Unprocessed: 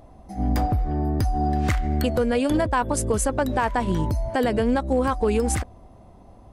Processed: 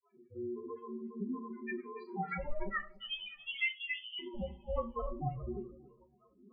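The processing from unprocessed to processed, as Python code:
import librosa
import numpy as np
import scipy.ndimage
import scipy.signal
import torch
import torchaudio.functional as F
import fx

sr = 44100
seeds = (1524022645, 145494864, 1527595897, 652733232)

p1 = fx.spec_dropout(x, sr, seeds[0], share_pct=70)
p2 = fx.over_compress(p1, sr, threshold_db=-32.0, ratio=-1.0)
p3 = p1 + (p2 * 10.0 ** (-2.5 / 20.0))
p4 = fx.vibrato(p3, sr, rate_hz=9.9, depth_cents=29.0)
p5 = fx.spec_topn(p4, sr, count=1)
p6 = fx.filter_sweep_lowpass(p5, sr, from_hz=2200.0, to_hz=880.0, start_s=1.76, end_s=4.21, q=5.6)
p7 = p6 * np.sin(2.0 * np.pi * 300.0 * np.arange(len(p6)) / sr)
p8 = fx.freq_invert(p7, sr, carrier_hz=3300, at=(2.96, 4.19))
p9 = p8 + fx.echo_feedback(p8, sr, ms=287, feedback_pct=31, wet_db=-18.0, dry=0)
p10 = fx.room_shoebox(p9, sr, seeds[1], volume_m3=160.0, walls='furnished', distance_m=1.0)
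p11 = fx.rotary(p10, sr, hz=0.75)
p12 = fx.comb_cascade(p11, sr, direction='rising', hz=0.56)
y = p12 * 10.0 ** (-3.0 / 20.0)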